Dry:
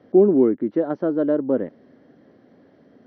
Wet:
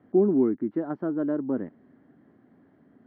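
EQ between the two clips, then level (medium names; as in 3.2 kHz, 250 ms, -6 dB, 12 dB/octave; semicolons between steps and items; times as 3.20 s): low-pass 1.8 kHz 12 dB/octave; peaking EQ 520 Hz -11.5 dB 0.62 oct; -3.0 dB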